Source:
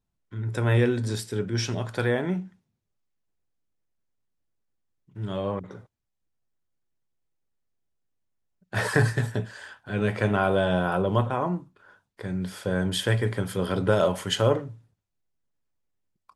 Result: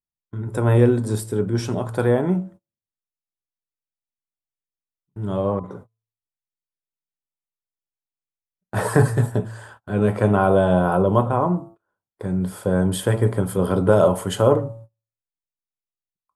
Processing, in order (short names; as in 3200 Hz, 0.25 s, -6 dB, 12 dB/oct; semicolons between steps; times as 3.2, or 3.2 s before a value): de-hum 112.4 Hz, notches 12; gate -47 dBFS, range -26 dB; band shelf 3200 Hz -11.5 dB 2.3 oct; gain +7 dB